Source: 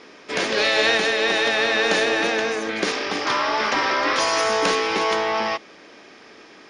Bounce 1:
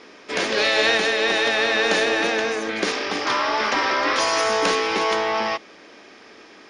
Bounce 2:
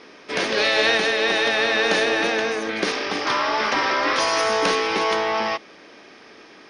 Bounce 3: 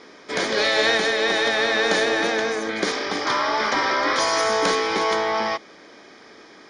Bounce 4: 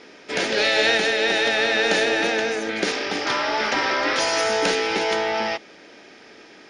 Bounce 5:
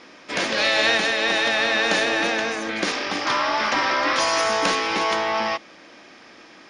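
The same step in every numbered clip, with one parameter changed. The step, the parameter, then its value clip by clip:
notch filter, centre frequency: 150, 7,200, 2,700, 1,100, 420 Hertz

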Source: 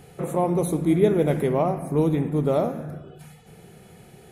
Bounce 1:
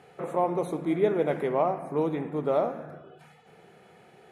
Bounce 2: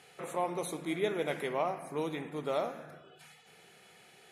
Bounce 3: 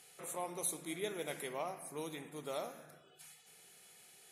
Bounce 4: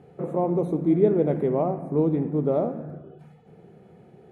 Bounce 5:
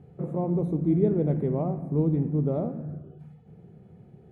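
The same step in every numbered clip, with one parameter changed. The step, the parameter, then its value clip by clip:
resonant band-pass, frequency: 1,100, 3,000, 7,600, 340, 130 Hertz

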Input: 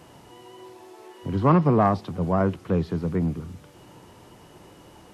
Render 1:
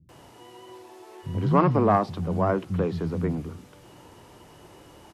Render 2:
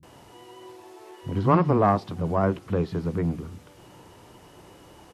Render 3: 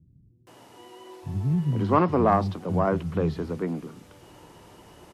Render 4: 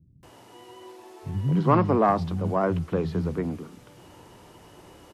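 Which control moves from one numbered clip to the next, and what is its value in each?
multiband delay without the direct sound, delay time: 90, 30, 470, 230 milliseconds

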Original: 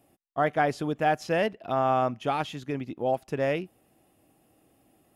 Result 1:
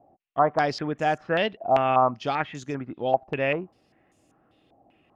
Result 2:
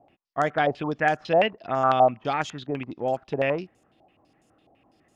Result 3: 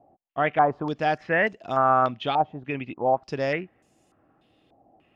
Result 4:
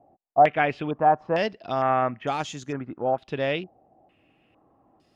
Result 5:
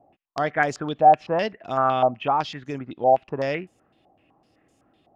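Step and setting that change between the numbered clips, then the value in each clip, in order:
low-pass on a step sequencer, speed: 5.1, 12, 3.4, 2.2, 7.9 Hertz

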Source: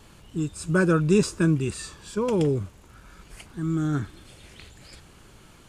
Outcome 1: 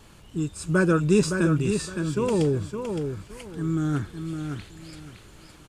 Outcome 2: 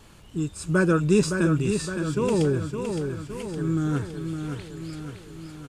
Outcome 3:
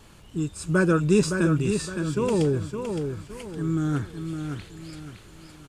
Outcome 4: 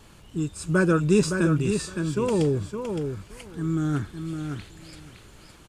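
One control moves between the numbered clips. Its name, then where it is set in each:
repeating echo, feedback: 24, 57, 36, 15%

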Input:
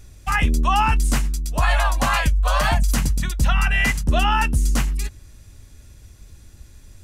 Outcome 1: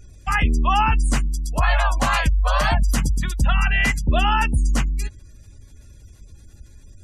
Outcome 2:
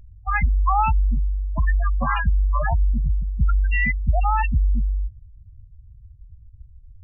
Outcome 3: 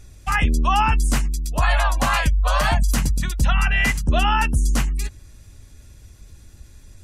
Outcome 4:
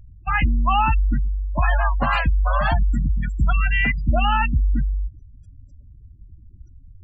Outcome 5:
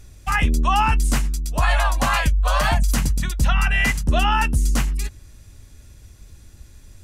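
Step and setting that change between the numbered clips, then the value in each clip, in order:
gate on every frequency bin, under each frame's peak: −35, −10, −45, −20, −60 decibels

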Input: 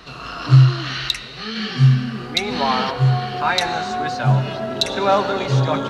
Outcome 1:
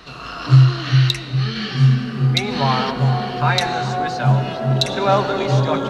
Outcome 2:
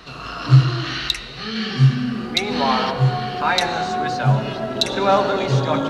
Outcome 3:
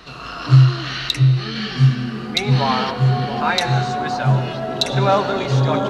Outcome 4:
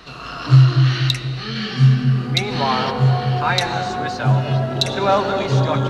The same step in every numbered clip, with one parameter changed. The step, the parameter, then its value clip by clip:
delay with a low-pass on its return, delay time: 406, 72, 682, 240 milliseconds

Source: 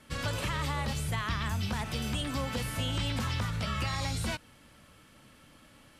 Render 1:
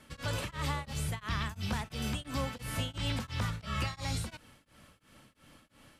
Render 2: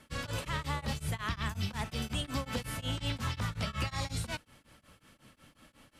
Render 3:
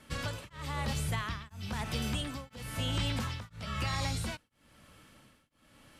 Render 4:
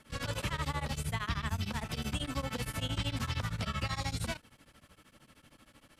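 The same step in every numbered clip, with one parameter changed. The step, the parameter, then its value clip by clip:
tremolo along a rectified sine, nulls at: 2.9, 5.5, 1, 13 Hertz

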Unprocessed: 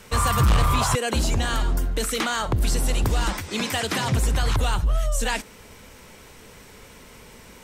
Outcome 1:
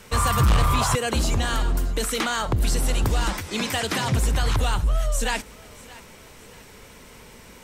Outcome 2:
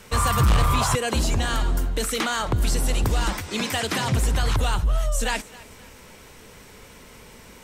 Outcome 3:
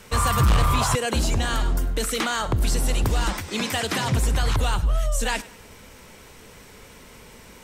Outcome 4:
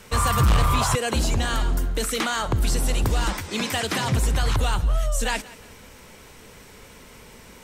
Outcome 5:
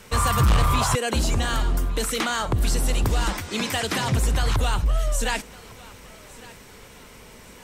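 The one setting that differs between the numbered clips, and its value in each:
feedback echo with a high-pass in the loop, delay time: 627, 266, 100, 178, 1,157 milliseconds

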